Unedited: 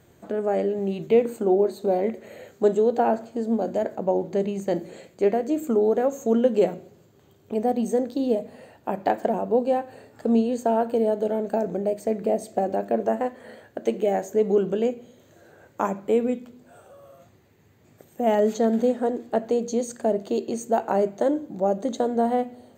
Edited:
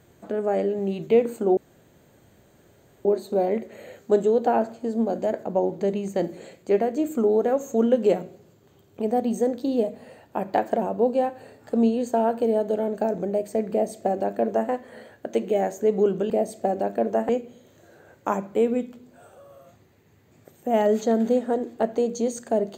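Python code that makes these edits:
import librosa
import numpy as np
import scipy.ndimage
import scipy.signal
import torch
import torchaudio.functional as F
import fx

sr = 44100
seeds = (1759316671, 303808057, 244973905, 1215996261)

y = fx.edit(x, sr, fx.insert_room_tone(at_s=1.57, length_s=1.48),
    fx.duplicate(start_s=12.23, length_s=0.99, to_s=14.82), tone=tone)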